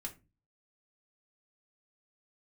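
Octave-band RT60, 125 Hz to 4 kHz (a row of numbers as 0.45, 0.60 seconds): 0.55, 0.45, 0.30, 0.25, 0.25, 0.20 seconds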